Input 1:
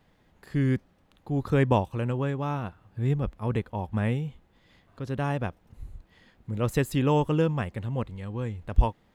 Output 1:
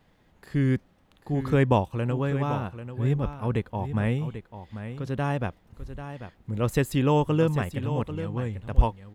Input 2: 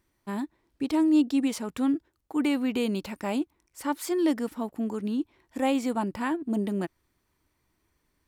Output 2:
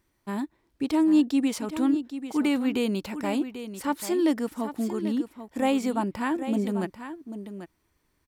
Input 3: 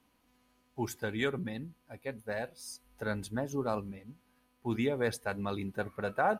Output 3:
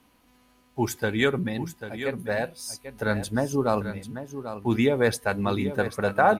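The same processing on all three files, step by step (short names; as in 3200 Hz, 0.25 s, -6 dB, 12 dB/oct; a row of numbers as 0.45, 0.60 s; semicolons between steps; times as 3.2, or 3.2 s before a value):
echo 0.791 s -11 dB; match loudness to -27 LUFS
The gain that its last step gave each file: +1.0, +1.0, +9.0 dB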